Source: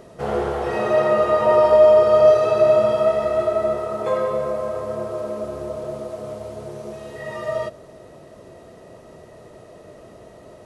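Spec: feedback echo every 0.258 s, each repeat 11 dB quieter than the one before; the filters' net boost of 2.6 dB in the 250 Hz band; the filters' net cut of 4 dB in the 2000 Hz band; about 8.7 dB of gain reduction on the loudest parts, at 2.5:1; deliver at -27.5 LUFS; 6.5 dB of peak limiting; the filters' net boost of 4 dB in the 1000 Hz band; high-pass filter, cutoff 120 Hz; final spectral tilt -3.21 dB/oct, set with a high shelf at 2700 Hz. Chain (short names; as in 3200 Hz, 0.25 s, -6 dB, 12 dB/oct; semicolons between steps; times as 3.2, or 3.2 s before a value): HPF 120 Hz; bell 250 Hz +4 dB; bell 1000 Hz +7 dB; bell 2000 Hz -4.5 dB; high shelf 2700 Hz -5.5 dB; compressor 2.5:1, threshold -20 dBFS; limiter -15.5 dBFS; feedback echo 0.258 s, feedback 28%, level -11 dB; gain -3 dB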